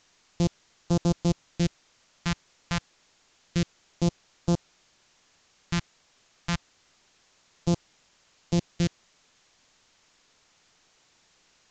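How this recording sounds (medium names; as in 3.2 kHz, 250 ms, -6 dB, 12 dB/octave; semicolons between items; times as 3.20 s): a buzz of ramps at a fixed pitch in blocks of 256 samples; phasing stages 2, 0.28 Hz, lowest notch 370–1900 Hz; a quantiser's noise floor 10-bit, dither triangular; µ-law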